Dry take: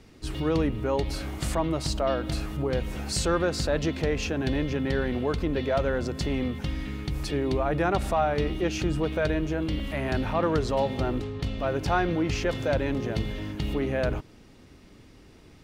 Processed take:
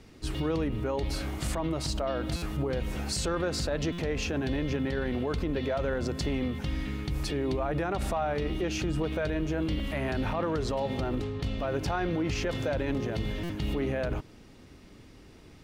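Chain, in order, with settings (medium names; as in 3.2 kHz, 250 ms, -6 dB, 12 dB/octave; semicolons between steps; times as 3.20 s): peak limiter -21.5 dBFS, peak gain reduction 8.5 dB; buffer glitch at 2.36/3.92/13.43 s, samples 256, times 10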